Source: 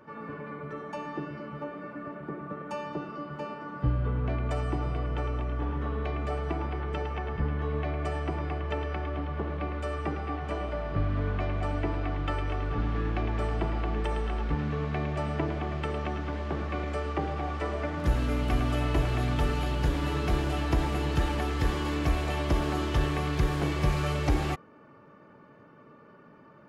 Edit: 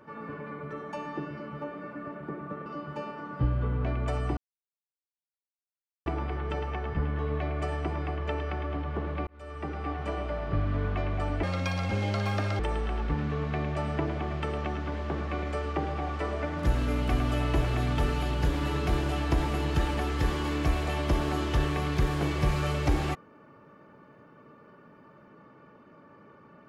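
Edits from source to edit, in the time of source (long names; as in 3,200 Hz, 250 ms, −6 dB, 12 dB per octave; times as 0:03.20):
0:02.66–0:03.09: remove
0:04.80–0:06.49: silence
0:09.70–0:10.30: fade in
0:11.86–0:14.00: play speed 184%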